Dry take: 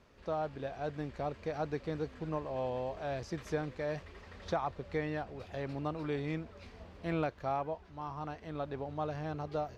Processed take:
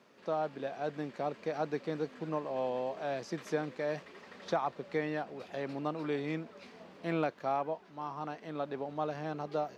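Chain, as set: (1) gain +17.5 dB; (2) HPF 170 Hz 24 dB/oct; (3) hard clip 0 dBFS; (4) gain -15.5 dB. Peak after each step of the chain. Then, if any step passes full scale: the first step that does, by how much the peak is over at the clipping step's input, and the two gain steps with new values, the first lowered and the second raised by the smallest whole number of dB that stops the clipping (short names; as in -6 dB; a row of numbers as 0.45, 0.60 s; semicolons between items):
-4.0, -2.5, -2.5, -18.0 dBFS; no overload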